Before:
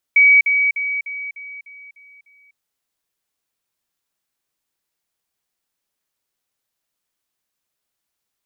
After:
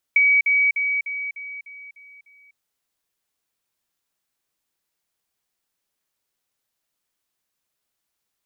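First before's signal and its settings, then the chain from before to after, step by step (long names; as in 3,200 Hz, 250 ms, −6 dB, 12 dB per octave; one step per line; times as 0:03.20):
level staircase 2,270 Hz −7.5 dBFS, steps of −6 dB, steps 8, 0.25 s 0.05 s
downward compressor, threshold −15 dBFS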